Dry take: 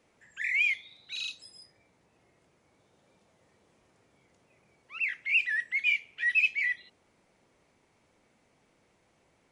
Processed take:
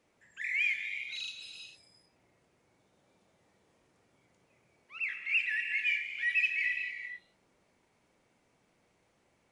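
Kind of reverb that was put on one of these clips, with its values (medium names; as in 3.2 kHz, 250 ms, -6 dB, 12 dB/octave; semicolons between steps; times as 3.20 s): gated-style reverb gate 470 ms flat, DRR 4 dB; trim -4.5 dB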